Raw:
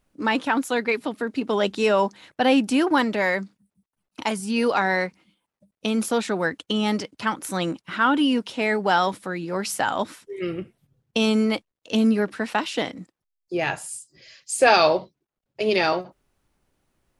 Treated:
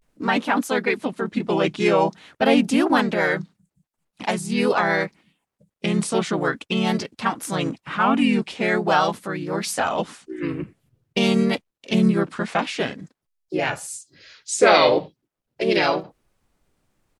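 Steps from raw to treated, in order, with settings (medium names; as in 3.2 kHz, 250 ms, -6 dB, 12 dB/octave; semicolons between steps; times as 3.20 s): vibrato 0.46 Hz 88 cents; harmony voices -7 st -15 dB, -3 st 0 dB; trim -1.5 dB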